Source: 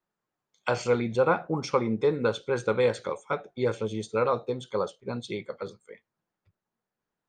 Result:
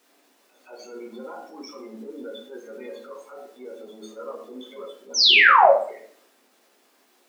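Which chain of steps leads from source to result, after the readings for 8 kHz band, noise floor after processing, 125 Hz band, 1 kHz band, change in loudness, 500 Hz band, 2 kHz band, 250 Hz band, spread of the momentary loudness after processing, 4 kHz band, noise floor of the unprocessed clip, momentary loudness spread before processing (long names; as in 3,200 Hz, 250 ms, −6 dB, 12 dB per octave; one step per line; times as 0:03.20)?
+8.0 dB, −62 dBFS, below −25 dB, +10.0 dB, +13.5 dB, −1.5 dB, +14.0 dB, −9.0 dB, 11 LU, +19.5 dB, below −85 dBFS, 11 LU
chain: notch filter 500 Hz, Q 12
downward compressor 4 to 1, threshold −36 dBFS, peak gain reduction 14.5 dB
spectral peaks only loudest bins 16
brickwall limiter −32.5 dBFS, peak gain reduction 7 dB
echo ahead of the sound 172 ms −23 dB
sound drawn into the spectrogram fall, 0:05.14–0:05.71, 520–6,400 Hz −19 dBFS
background noise pink −65 dBFS
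transient designer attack −11 dB, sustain +2 dB
linear-phase brick-wall high-pass 210 Hz
rectangular room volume 66 cubic metres, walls mixed, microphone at 0.84 metres
level +2 dB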